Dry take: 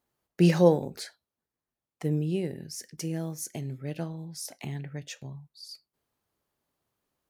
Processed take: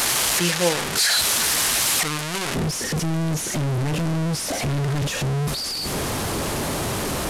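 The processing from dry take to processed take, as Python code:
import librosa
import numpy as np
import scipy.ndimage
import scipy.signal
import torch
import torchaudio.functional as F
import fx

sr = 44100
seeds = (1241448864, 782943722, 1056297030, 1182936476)

y = fx.delta_mod(x, sr, bps=64000, step_db=-20.0)
y = fx.tilt_shelf(y, sr, db=fx.steps((0.0, -7.5), (2.54, 3.0)), hz=840.0)
y = F.gain(torch.from_numpy(y), 1.5).numpy()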